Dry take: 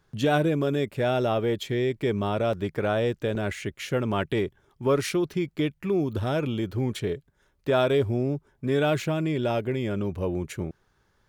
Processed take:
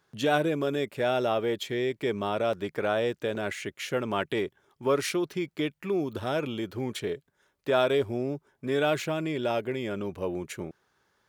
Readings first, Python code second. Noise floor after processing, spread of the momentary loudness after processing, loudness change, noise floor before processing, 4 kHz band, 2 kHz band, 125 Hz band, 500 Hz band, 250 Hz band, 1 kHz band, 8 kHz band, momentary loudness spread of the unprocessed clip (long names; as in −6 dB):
−75 dBFS, 9 LU, −2.5 dB, −68 dBFS, 0.0 dB, 0.0 dB, −9.0 dB, −2.0 dB, −4.0 dB, −0.5 dB, 0.0 dB, 8 LU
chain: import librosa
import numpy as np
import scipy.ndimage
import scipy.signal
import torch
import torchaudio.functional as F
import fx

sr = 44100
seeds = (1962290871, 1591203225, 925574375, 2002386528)

y = fx.highpass(x, sr, hz=350.0, slope=6)